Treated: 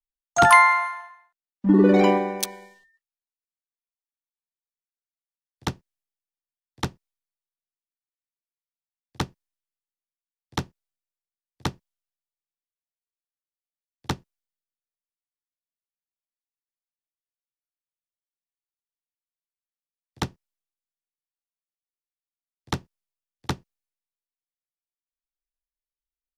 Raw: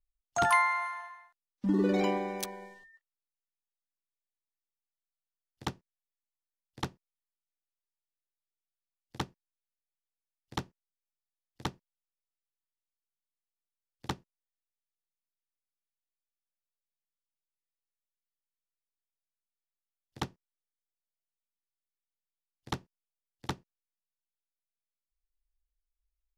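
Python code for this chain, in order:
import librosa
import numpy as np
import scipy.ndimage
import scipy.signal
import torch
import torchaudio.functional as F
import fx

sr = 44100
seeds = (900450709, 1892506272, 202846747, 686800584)

y = fx.band_widen(x, sr, depth_pct=70)
y = y * 10.0 ** (5.0 / 20.0)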